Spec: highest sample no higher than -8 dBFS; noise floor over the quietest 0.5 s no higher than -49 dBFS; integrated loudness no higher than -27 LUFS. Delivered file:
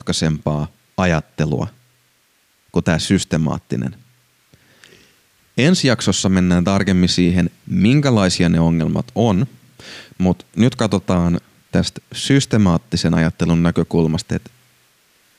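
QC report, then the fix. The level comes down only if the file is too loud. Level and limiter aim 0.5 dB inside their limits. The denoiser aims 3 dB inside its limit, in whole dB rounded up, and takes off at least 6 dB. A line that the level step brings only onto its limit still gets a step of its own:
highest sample -2.5 dBFS: fail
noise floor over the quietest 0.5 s -59 dBFS: pass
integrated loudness -17.5 LUFS: fail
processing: trim -10 dB

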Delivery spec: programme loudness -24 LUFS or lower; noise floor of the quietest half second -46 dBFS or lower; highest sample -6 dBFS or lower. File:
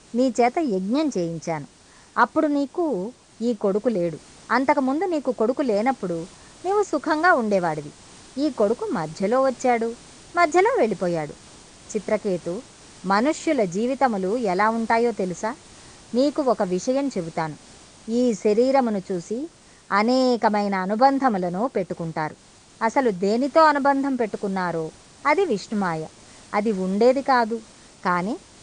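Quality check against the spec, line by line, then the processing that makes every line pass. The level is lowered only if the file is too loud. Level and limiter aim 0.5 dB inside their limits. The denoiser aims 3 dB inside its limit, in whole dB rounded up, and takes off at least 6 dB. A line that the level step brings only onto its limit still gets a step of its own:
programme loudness -22.5 LUFS: fail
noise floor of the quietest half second -51 dBFS: pass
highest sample -5.0 dBFS: fail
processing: trim -2 dB

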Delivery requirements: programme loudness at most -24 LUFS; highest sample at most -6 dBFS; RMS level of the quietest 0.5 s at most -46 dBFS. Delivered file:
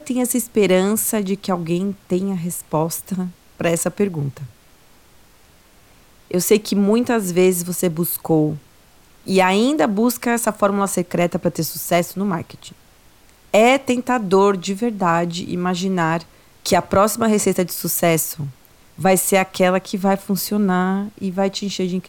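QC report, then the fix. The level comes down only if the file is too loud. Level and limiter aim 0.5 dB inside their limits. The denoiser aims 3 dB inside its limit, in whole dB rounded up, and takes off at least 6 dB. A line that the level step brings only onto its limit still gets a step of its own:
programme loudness -19.0 LUFS: fail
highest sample -3.0 dBFS: fail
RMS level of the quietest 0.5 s -50 dBFS: pass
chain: trim -5.5 dB

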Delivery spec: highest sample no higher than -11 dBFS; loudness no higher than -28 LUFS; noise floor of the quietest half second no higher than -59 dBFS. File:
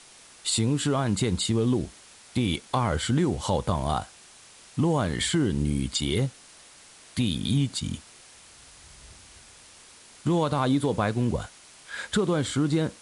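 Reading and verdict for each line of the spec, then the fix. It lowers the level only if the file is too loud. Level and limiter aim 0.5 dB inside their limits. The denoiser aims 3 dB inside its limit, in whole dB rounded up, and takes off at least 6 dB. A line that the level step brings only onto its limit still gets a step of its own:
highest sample -11.5 dBFS: pass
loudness -26.5 LUFS: fail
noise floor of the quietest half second -51 dBFS: fail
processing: noise reduction 9 dB, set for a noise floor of -51 dBFS; trim -2 dB

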